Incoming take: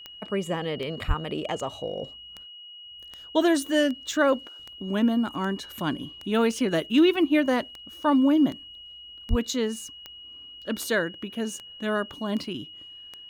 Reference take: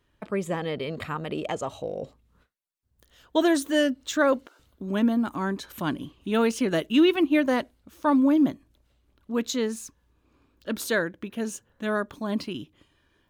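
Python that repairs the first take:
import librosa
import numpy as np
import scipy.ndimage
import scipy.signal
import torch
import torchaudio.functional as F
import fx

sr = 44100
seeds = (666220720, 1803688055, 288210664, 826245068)

y = fx.fix_declick_ar(x, sr, threshold=10.0)
y = fx.notch(y, sr, hz=2900.0, q=30.0)
y = fx.highpass(y, sr, hz=140.0, slope=24, at=(1.07, 1.19), fade=0.02)
y = fx.highpass(y, sr, hz=140.0, slope=24, at=(9.29, 9.41), fade=0.02)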